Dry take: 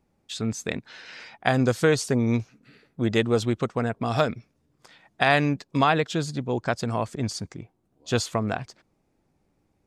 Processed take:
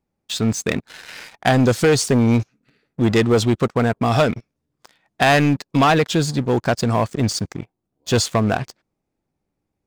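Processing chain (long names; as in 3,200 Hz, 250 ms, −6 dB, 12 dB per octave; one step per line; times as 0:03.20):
leveller curve on the samples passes 3
level −2 dB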